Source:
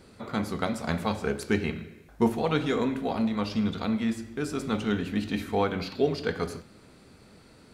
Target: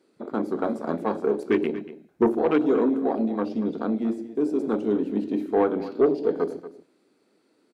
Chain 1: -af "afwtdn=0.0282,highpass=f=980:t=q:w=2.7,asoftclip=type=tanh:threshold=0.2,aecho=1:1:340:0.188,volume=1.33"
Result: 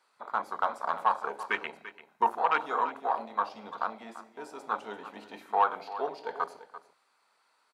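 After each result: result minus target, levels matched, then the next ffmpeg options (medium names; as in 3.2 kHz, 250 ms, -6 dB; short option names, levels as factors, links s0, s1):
250 Hz band -18.5 dB; echo 105 ms late
-af "afwtdn=0.0282,highpass=f=320:t=q:w=2.7,asoftclip=type=tanh:threshold=0.2,aecho=1:1:340:0.188,volume=1.33"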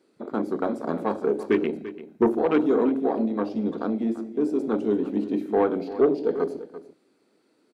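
echo 105 ms late
-af "afwtdn=0.0282,highpass=f=320:t=q:w=2.7,asoftclip=type=tanh:threshold=0.2,aecho=1:1:235:0.188,volume=1.33"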